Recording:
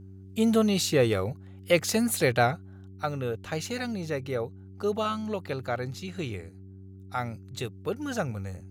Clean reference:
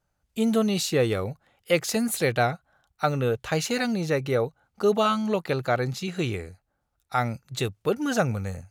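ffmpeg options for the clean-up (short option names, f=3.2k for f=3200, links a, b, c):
-af "bandreject=f=95.7:t=h:w=4,bandreject=f=191.4:t=h:w=4,bandreject=f=287.1:t=h:w=4,bandreject=f=382.8:t=h:w=4,asetnsamples=n=441:p=0,asendcmd='2.87 volume volume 6.5dB',volume=0dB"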